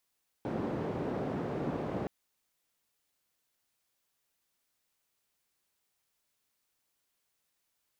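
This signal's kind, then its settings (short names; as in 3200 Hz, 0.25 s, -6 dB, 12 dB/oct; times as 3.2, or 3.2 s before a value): noise band 120–440 Hz, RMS -35 dBFS 1.62 s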